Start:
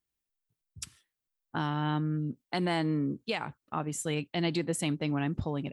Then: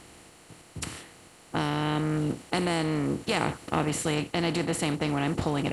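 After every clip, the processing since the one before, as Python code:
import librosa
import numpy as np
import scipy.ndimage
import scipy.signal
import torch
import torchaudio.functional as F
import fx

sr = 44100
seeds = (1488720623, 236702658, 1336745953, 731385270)

y = fx.bin_compress(x, sr, power=0.4)
y = fx.rider(y, sr, range_db=10, speed_s=0.5)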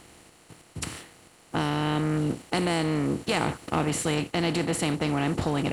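y = fx.leveller(x, sr, passes=1)
y = y * 10.0 ** (-2.0 / 20.0)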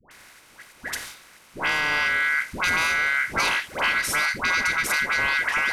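y = x * np.sin(2.0 * np.pi * 1800.0 * np.arange(len(x)) / sr)
y = fx.dispersion(y, sr, late='highs', ms=111.0, hz=870.0)
y = y * 10.0 ** (6.0 / 20.0)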